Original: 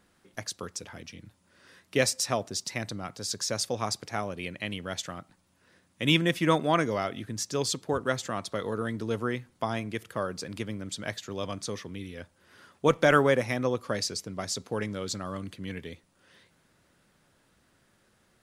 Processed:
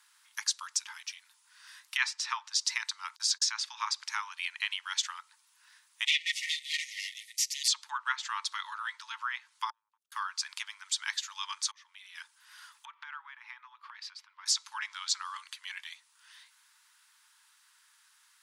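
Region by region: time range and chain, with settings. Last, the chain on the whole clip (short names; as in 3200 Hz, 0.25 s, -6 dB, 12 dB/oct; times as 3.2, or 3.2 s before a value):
3.16–3.67 gate -41 dBFS, range -37 dB + tone controls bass +7 dB, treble 0 dB
6.05–7.68 minimum comb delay 8.1 ms + brick-wall FIR band-pass 1800–13000 Hz
9.7–10.12 elliptic low-pass 540 Hz + compressor, threshold -42 dBFS
11.71–12.15 LPF 3200 Hz 6 dB/oct + auto swell 0.484 s
12.85–14.46 air absorption 400 m + compressor 4:1, threshold -40 dBFS
whole clip: treble ducked by the level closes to 2400 Hz, closed at -24 dBFS; Chebyshev high-pass 880 Hz, order 8; high shelf 2600 Hz +9.5 dB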